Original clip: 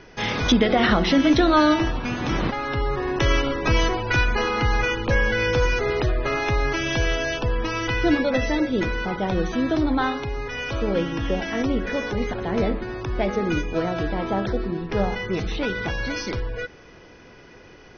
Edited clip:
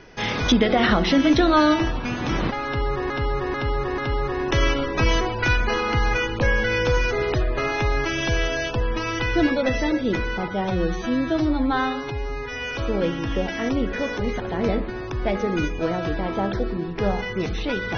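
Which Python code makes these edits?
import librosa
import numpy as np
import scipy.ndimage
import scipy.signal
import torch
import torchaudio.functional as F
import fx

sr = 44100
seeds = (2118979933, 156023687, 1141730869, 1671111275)

y = fx.edit(x, sr, fx.repeat(start_s=2.66, length_s=0.44, count=4),
    fx.stretch_span(start_s=9.16, length_s=1.49, factor=1.5), tone=tone)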